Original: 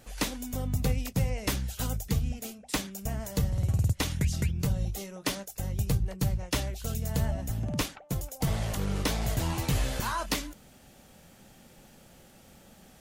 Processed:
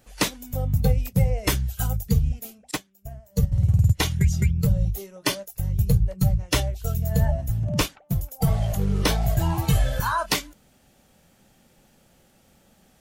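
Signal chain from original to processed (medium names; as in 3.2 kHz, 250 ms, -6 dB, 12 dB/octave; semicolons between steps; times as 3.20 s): spectral noise reduction 12 dB; 2.71–3.52 s: upward expansion 2.5:1, over -37 dBFS; trim +8 dB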